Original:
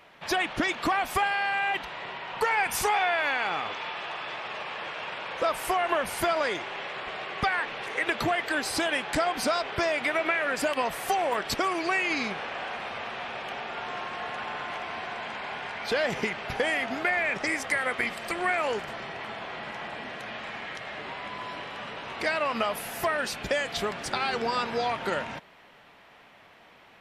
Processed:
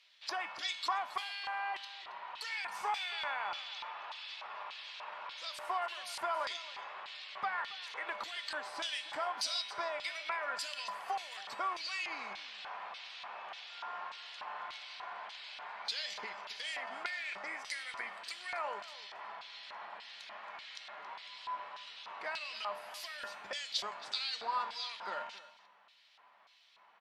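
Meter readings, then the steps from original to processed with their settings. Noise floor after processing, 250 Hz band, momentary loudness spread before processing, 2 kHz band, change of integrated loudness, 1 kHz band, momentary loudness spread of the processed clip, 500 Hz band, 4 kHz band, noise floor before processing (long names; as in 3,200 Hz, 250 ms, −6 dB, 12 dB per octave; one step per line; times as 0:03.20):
−64 dBFS, −26.5 dB, 11 LU, −13.0 dB, −11.0 dB, −10.0 dB, 11 LU, −17.0 dB, −5.0 dB, −54 dBFS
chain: high-shelf EQ 2,100 Hz +10 dB
tuned comb filter 200 Hz, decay 0.67 s, harmonics odd, mix 80%
auto-filter band-pass square 1.7 Hz 990–4,300 Hz
single-tap delay 274 ms −17.5 dB
level +6.5 dB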